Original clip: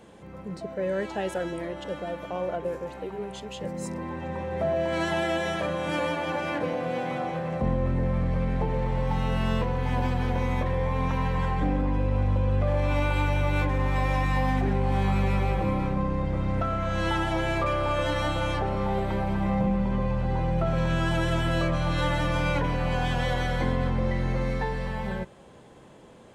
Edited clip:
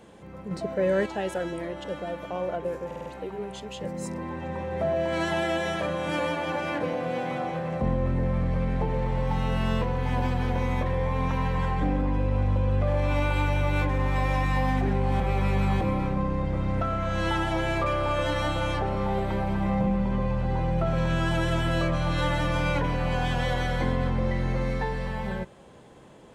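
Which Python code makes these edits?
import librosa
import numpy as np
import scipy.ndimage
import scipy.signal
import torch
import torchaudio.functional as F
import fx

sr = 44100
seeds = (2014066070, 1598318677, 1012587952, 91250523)

y = fx.edit(x, sr, fx.clip_gain(start_s=0.51, length_s=0.55, db=4.5),
    fx.stutter(start_s=2.86, slice_s=0.05, count=5),
    fx.reverse_span(start_s=15.0, length_s=0.61), tone=tone)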